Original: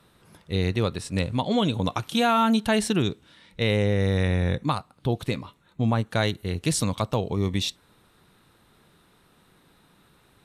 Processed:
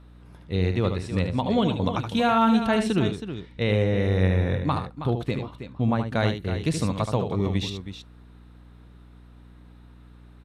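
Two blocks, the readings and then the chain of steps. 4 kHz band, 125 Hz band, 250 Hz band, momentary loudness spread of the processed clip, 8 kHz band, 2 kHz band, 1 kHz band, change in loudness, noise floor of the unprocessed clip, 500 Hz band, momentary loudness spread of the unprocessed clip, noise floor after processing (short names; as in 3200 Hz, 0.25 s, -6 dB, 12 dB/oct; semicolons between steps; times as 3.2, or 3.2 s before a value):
-4.0 dB, +1.0 dB, +1.0 dB, 10 LU, -8.5 dB, -1.0 dB, +0.5 dB, +0.5 dB, -61 dBFS, +1.0 dB, 8 LU, -49 dBFS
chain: LPF 2500 Hz 6 dB/oct; on a send: tapped delay 75/321 ms -7.5/-10.5 dB; on the sum: hum 60 Hz, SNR 23 dB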